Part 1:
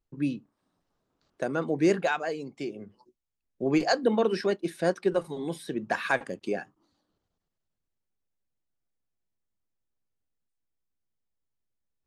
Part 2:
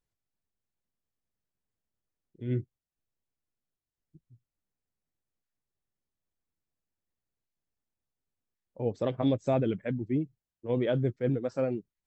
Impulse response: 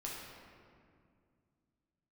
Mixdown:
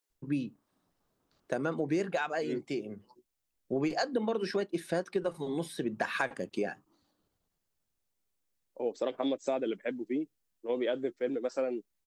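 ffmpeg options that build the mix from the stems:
-filter_complex "[0:a]adelay=100,volume=0dB[a];[1:a]highpass=f=280:w=0.5412,highpass=f=280:w=1.3066,highshelf=f=3.8k:g=7.5,volume=1dB[b];[a][b]amix=inputs=2:normalize=0,acompressor=threshold=-27dB:ratio=6"

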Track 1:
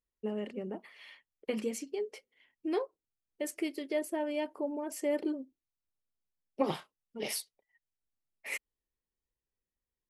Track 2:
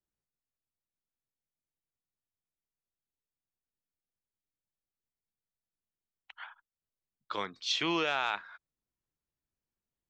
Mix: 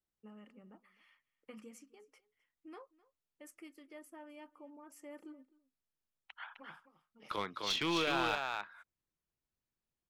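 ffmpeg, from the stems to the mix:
-filter_complex "[0:a]equalizer=f=400:t=o:w=0.33:g=-12,equalizer=f=630:t=o:w=0.33:g=-6,equalizer=f=1.25k:t=o:w=0.33:g=12,equalizer=f=4k:t=o:w=0.33:g=-11,volume=-15.5dB,asplit=2[a][b];[b]volume=-22dB[c];[1:a]highshelf=f=5.8k:g=-7,volume=-1.5dB,asplit=3[d][e][f];[e]volume=-4.5dB[g];[f]apad=whole_len=445325[h];[a][h]sidechaincompress=threshold=-52dB:ratio=8:attack=11:release=1490[i];[c][g]amix=inputs=2:normalize=0,aecho=0:1:258:1[j];[i][d][j]amix=inputs=3:normalize=0,aeval=exprs='clip(val(0),-1,0.0316)':c=same"

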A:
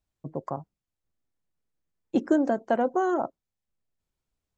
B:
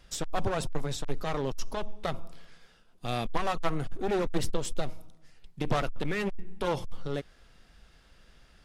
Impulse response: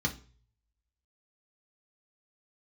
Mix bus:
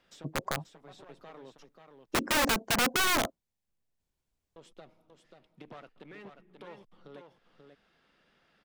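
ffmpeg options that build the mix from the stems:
-filter_complex "[0:a]bandreject=f=1.3k:w=12,adynamicequalizer=threshold=0.0158:dfrequency=200:dqfactor=1.5:tfrequency=200:tqfactor=1.5:attack=5:release=100:ratio=0.375:range=2:mode=boostabove:tftype=bell,aeval=exprs='(mod(11.2*val(0)+1,2)-1)/11.2':c=same,volume=0dB,asplit=2[a][b];[1:a]acrossover=split=160 4100:gain=0.0708 1 0.224[c][d][e];[c][d][e]amix=inputs=3:normalize=0,acompressor=threshold=-49dB:ratio=2,volume=-6dB,asplit=3[f][g][h];[f]atrim=end=1.69,asetpts=PTS-STARTPTS,afade=t=out:st=1.686:d=0.004:c=hsin[i];[g]atrim=start=1.69:end=4.56,asetpts=PTS-STARTPTS,volume=0[j];[h]atrim=start=4.56,asetpts=PTS-STARTPTS,afade=t=in:d=0.004:c=hsin[k];[i][j][k]concat=n=3:v=0:a=1,asplit=2[l][m];[m]volume=-6.5dB[n];[b]apad=whole_len=381210[o];[l][o]sidechaincompress=threshold=-47dB:ratio=8:attack=24:release=254[p];[n]aecho=0:1:536:1[q];[a][p][q]amix=inputs=3:normalize=0"

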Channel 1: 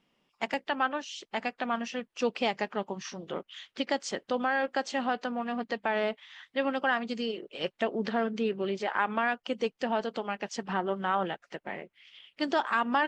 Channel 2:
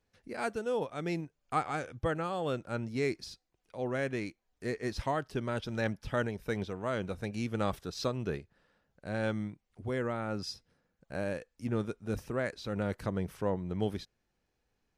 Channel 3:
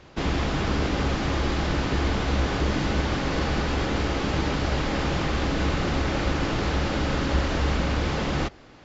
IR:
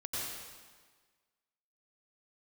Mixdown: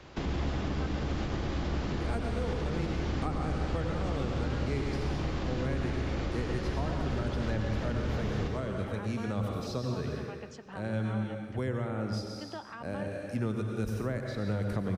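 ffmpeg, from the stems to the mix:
-filter_complex "[0:a]volume=-14dB,asplit=3[a][b][c];[b]volume=-18dB[d];[1:a]adelay=1700,volume=1.5dB,asplit=2[e][f];[f]volume=-3.5dB[g];[2:a]alimiter=limit=-20dB:level=0:latency=1:release=102,volume=-3.5dB,asplit=2[h][i];[i]volume=-6dB[j];[c]apad=whole_len=735186[k];[e][k]sidechaincompress=threshold=-44dB:ratio=8:attack=37:release=429[l];[3:a]atrim=start_sample=2205[m];[d][g][j]amix=inputs=3:normalize=0[n];[n][m]afir=irnorm=-1:irlink=0[o];[a][l][h][o]amix=inputs=4:normalize=0,acrossover=split=230|690[p][q][r];[p]acompressor=threshold=-29dB:ratio=4[s];[q]acompressor=threshold=-38dB:ratio=4[t];[r]acompressor=threshold=-43dB:ratio=4[u];[s][t][u]amix=inputs=3:normalize=0"

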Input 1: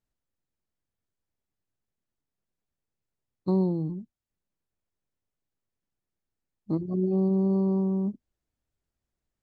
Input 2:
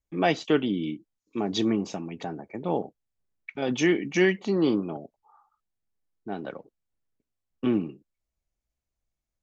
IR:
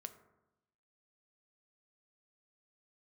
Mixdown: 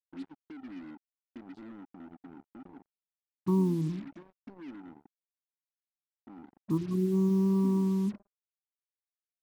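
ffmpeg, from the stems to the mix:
-filter_complex "[0:a]equalizer=f=550:t=o:w=0.21:g=-13,volume=-3dB,asplit=2[a][b];[b]volume=-6.5dB[c];[1:a]acompressor=threshold=-29dB:ratio=10,asplit=3[d][e][f];[d]bandpass=f=270:t=q:w=8,volume=0dB[g];[e]bandpass=f=2.29k:t=q:w=8,volume=-6dB[h];[f]bandpass=f=3.01k:t=q:w=8,volume=-9dB[i];[g][h][i]amix=inputs=3:normalize=0,volume=-5.5dB,asplit=2[j][k];[k]volume=-7.5dB[l];[2:a]atrim=start_sample=2205[m];[c][l]amix=inputs=2:normalize=0[n];[n][m]afir=irnorm=-1:irlink=0[o];[a][j][o]amix=inputs=3:normalize=0,firequalizer=gain_entry='entry(340,0);entry(710,-20);entry(1000,8);entry(2300,-27);entry(5000,-11)':delay=0.05:min_phase=1,acrusher=bits=7:mix=0:aa=0.5"

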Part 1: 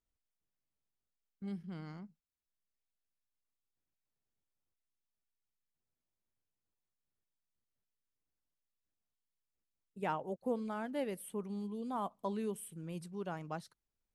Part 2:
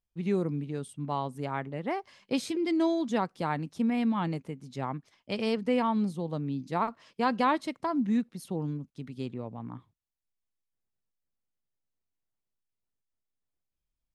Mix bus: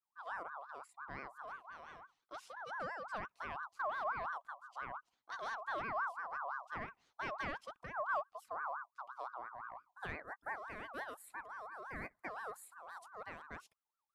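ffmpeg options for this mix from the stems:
-filter_complex "[0:a]volume=-5dB,asplit=2[a][b];[1:a]asubboost=boost=4.5:cutoff=220,aeval=exprs='0.211*(cos(1*acos(clip(val(0)/0.211,-1,1)))-cos(1*PI/2))+0.00596*(cos(3*acos(clip(val(0)/0.211,-1,1)))-cos(3*PI/2))+0.00422*(cos(6*acos(clip(val(0)/0.211,-1,1)))-cos(6*PI/2))':c=same,volume=-13.5dB[c];[b]apad=whole_len=623655[d];[c][d]sidechaincompress=threshold=-60dB:ratio=6:attack=16:release=859[e];[a][e]amix=inputs=2:normalize=0,aeval=exprs='val(0)*sin(2*PI*1100*n/s+1100*0.25/5.8*sin(2*PI*5.8*n/s))':c=same"

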